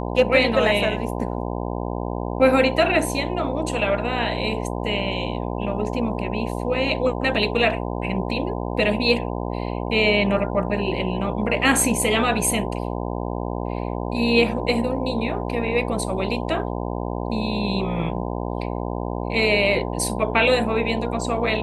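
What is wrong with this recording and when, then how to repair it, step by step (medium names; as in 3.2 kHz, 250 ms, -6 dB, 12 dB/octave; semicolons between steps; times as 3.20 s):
buzz 60 Hz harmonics 17 -27 dBFS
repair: de-hum 60 Hz, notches 17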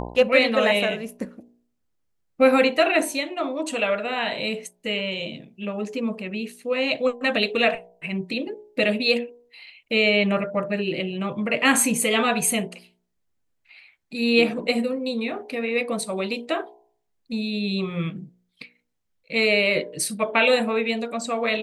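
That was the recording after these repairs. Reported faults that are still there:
nothing left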